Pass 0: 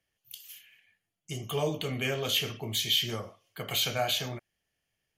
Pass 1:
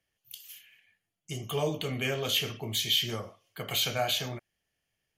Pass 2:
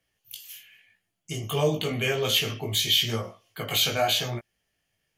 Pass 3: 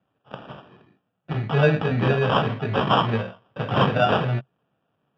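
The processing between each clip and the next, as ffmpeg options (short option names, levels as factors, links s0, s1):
-af anull
-af "flanger=delay=17:depth=3:speed=0.9,volume=2.51"
-af "acrusher=samples=21:mix=1:aa=0.000001,highpass=130,equalizer=f=130:t=q:w=4:g=8,equalizer=f=190:t=q:w=4:g=4,equalizer=f=340:t=q:w=4:g=-6,equalizer=f=990:t=q:w=4:g=-6,lowpass=f=3100:w=0.5412,lowpass=f=3100:w=1.3066,volume=2"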